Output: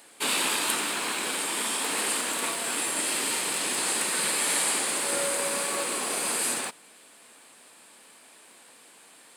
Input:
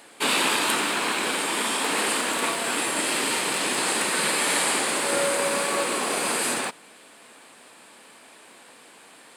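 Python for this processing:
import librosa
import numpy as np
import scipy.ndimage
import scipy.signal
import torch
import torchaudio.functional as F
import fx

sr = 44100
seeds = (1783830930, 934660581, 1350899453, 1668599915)

y = fx.high_shelf(x, sr, hz=4900.0, db=8.5)
y = F.gain(torch.from_numpy(y), -6.5).numpy()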